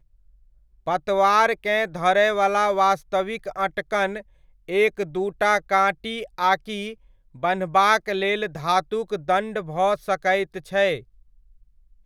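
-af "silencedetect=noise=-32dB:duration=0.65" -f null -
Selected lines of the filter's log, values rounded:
silence_start: 0.00
silence_end: 0.87 | silence_duration: 0.87
silence_start: 10.99
silence_end: 12.06 | silence_duration: 1.06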